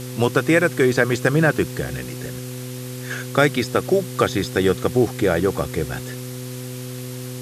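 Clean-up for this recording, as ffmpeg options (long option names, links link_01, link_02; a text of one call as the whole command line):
ffmpeg -i in.wav -af "bandreject=frequency=125.8:width_type=h:width=4,bandreject=frequency=251.6:width_type=h:width=4,bandreject=frequency=377.4:width_type=h:width=4,bandreject=frequency=503.2:width_type=h:width=4,afftdn=noise_reduction=30:noise_floor=-32" out.wav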